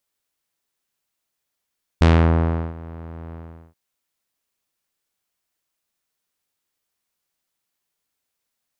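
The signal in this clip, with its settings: synth note saw E2 12 dB/oct, low-pass 1300 Hz, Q 0.8, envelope 2 oct, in 0.30 s, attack 3.9 ms, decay 0.72 s, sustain -23 dB, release 0.41 s, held 1.32 s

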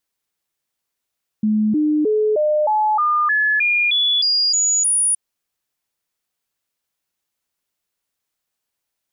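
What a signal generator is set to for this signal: stepped sine 214 Hz up, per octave 2, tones 12, 0.31 s, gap 0.00 s -14 dBFS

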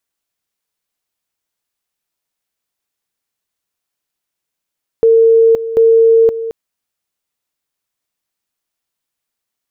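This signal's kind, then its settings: two-level tone 454 Hz -5 dBFS, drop 13 dB, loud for 0.52 s, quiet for 0.22 s, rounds 2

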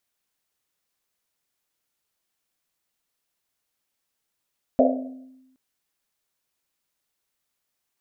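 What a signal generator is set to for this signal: Risset drum length 0.77 s, pitch 260 Hz, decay 1.09 s, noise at 600 Hz, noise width 200 Hz, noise 50%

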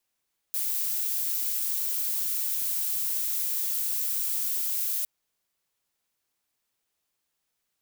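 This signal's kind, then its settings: noise violet, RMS -28.5 dBFS 4.51 s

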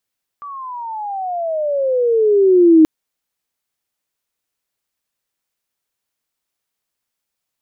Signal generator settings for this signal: gliding synth tone sine, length 2.43 s, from 1170 Hz, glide -23 st, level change +23.5 dB, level -4.5 dB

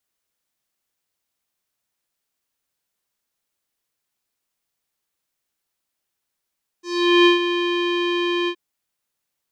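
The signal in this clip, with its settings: synth note square F4 12 dB/oct, low-pass 3100 Hz, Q 3.4, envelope 1 oct, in 0.28 s, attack 0.426 s, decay 0.13 s, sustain -9.5 dB, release 0.07 s, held 1.65 s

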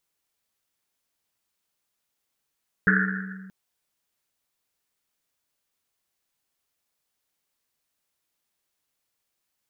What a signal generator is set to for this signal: Risset drum length 0.63 s, pitch 190 Hz, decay 1.93 s, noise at 1600 Hz, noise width 430 Hz, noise 55%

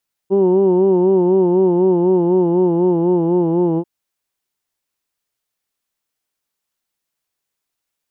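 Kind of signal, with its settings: formant vowel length 3.54 s, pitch 190 Hz, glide -2 st, vibrato 4 Hz, vibrato depth 0.8 st, F1 380 Hz, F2 900 Hz, F3 2900 Hz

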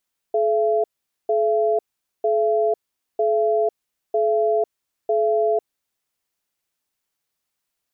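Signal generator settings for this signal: cadence 429 Hz, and 676 Hz, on 0.50 s, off 0.45 s, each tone -19 dBFS 5.64 s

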